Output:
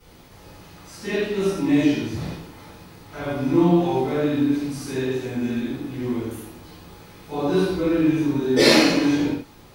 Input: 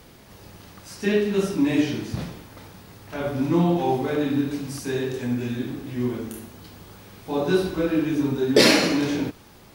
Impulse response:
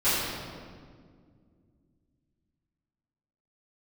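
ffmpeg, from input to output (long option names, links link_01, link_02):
-filter_complex "[1:a]atrim=start_sample=2205,afade=type=out:start_time=0.17:duration=0.01,atrim=end_sample=7938,asetrate=39690,aresample=44100[link_01];[0:a][link_01]afir=irnorm=-1:irlink=0,volume=-12.5dB"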